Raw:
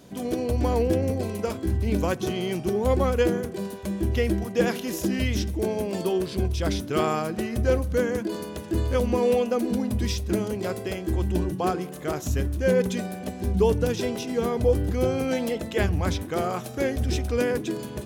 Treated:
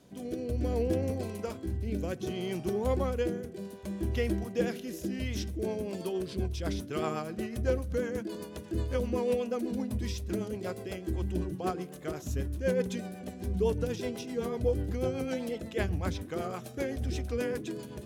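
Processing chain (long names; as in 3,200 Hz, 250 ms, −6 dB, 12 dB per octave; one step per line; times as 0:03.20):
rotating-speaker cabinet horn 0.65 Hz, later 8 Hz, at 0:05.18
level −6 dB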